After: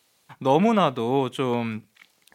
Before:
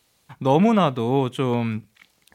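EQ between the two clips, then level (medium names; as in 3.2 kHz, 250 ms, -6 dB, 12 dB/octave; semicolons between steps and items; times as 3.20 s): high-pass 240 Hz 6 dB/octave; 0.0 dB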